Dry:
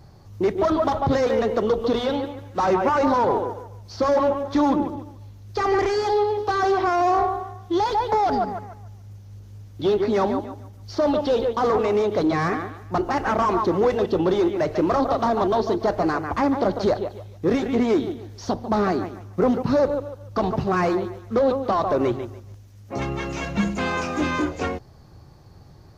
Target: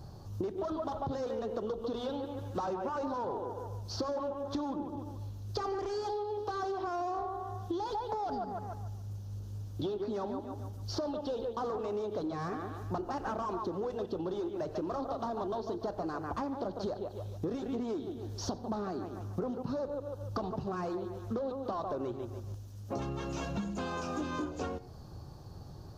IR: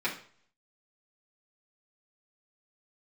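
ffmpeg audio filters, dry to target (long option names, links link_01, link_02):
-filter_complex "[0:a]equalizer=frequency=2100:width_type=o:width=0.55:gain=-13.5,acompressor=threshold=-33dB:ratio=10,asplit=2[link_01][link_02];[1:a]atrim=start_sample=2205,adelay=85[link_03];[link_02][link_03]afir=irnorm=-1:irlink=0,volume=-25dB[link_04];[link_01][link_04]amix=inputs=2:normalize=0"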